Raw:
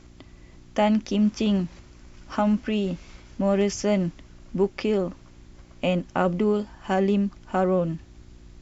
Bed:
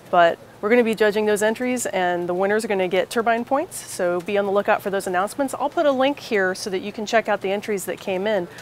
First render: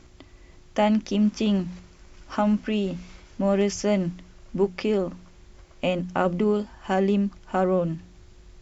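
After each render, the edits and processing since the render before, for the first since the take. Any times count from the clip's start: de-hum 60 Hz, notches 5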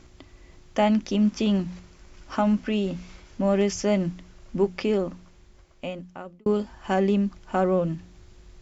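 4.93–6.46 s: fade out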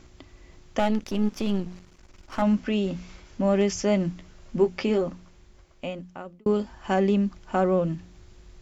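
0.79–2.42 s: partial rectifier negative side -12 dB; 4.15–5.10 s: doubling 13 ms -7 dB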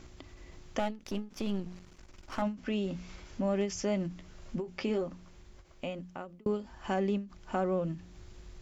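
compression 1.5:1, threshold -42 dBFS, peak gain reduction 9.5 dB; endings held to a fixed fall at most 170 dB/s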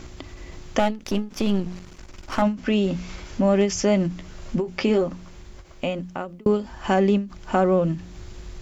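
trim +11.5 dB

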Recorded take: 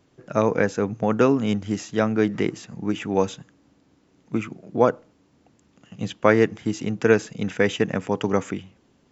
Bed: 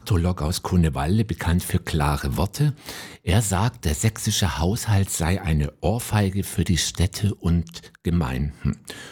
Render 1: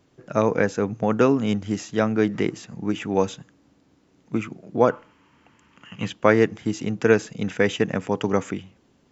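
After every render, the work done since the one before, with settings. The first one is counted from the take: 4.90–6.09 s: time-frequency box 850–3300 Hz +11 dB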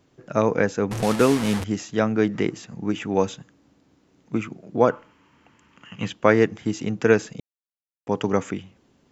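0.91–1.64 s: one-bit delta coder 64 kbps, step -22 dBFS; 7.40–8.07 s: mute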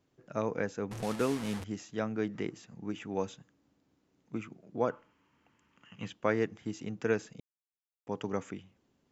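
trim -12.5 dB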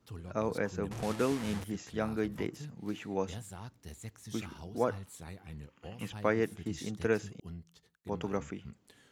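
add bed -24.5 dB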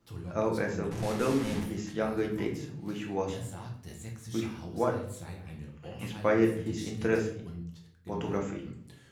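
simulated room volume 96 m³, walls mixed, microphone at 0.77 m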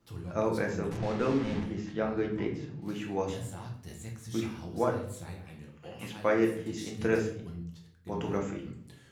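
0.97–2.82 s: distance through air 140 m; 5.44–6.99 s: bass shelf 140 Hz -10.5 dB

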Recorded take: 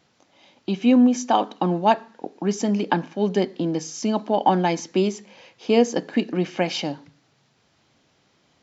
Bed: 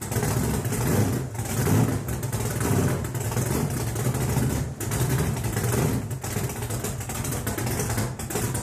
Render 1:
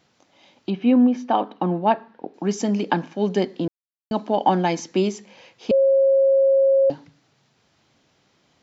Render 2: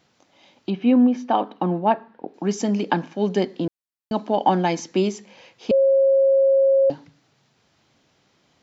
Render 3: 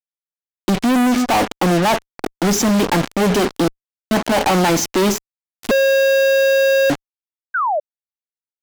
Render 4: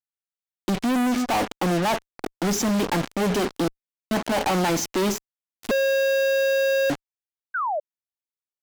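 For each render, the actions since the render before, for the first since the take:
0.70–2.34 s: distance through air 290 m; 3.68–4.11 s: mute; 5.71–6.90 s: bleep 542 Hz -13 dBFS
1.80–2.28 s: low-pass 2.9 kHz 6 dB/octave
fuzz box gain 43 dB, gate -35 dBFS; 7.54–7.80 s: painted sound fall 560–1600 Hz -18 dBFS
trim -7 dB

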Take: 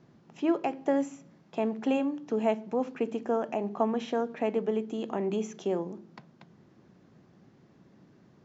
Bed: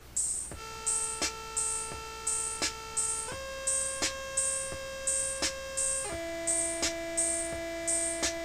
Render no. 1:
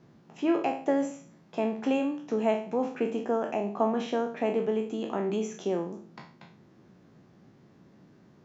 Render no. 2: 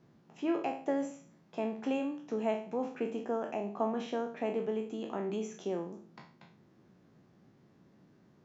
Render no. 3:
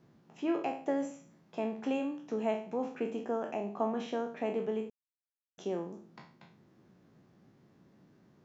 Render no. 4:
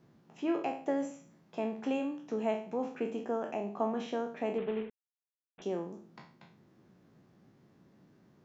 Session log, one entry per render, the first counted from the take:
spectral sustain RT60 0.45 s
trim -6 dB
4.90–5.58 s: mute
4.58–5.62 s: CVSD coder 16 kbps

